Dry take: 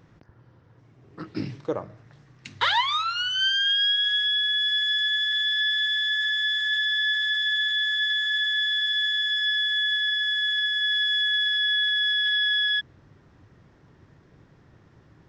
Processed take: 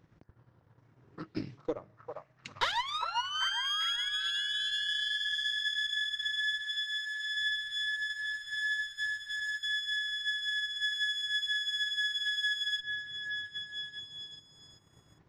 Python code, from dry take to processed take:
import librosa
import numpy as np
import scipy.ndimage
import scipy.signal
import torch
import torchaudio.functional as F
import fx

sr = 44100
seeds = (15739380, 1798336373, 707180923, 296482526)

p1 = fx.diode_clip(x, sr, knee_db=-20.5)
p2 = fx.highpass(p1, sr, hz=fx.line((6.61, 640.0), (7.35, 1400.0)), slope=12, at=(6.61, 7.35), fade=0.02)
p3 = fx.notch(p2, sr, hz=3400.0, q=23.0, at=(7.96, 9.63))
p4 = p3 + fx.echo_stepped(p3, sr, ms=397, hz=860.0, octaves=0.7, feedback_pct=70, wet_db=-0.5, dry=0)
p5 = fx.transient(p4, sr, attack_db=6, sustain_db=-7)
y = F.gain(torch.from_numpy(p5), -9.0).numpy()